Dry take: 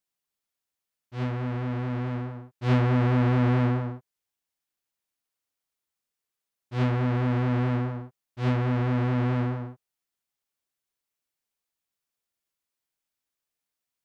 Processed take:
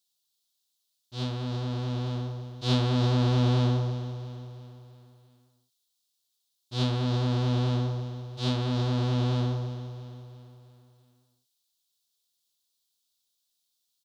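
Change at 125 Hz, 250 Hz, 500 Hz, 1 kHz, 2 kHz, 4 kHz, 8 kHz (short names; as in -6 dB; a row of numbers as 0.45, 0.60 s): -1.0 dB, -3.0 dB, -1.5 dB, -3.5 dB, -6.5 dB, +10.5 dB, n/a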